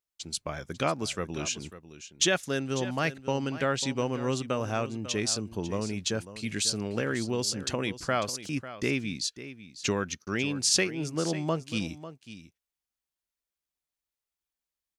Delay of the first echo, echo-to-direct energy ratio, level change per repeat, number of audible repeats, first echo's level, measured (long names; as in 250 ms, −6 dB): 546 ms, −14.0 dB, repeats not evenly spaced, 1, −14.0 dB